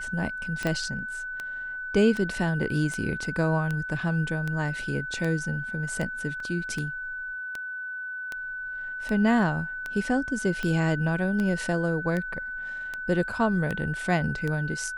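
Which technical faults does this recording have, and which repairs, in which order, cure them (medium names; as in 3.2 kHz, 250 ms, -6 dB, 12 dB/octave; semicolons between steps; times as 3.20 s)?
tick 78 rpm -18 dBFS
whine 1.5 kHz -32 dBFS
0.67 s: pop -14 dBFS
6.40 s: dropout 2.6 ms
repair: de-click; band-stop 1.5 kHz, Q 30; interpolate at 6.40 s, 2.6 ms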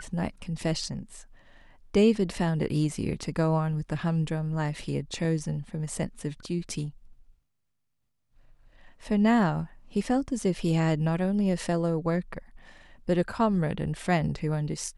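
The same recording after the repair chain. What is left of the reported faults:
0.67 s: pop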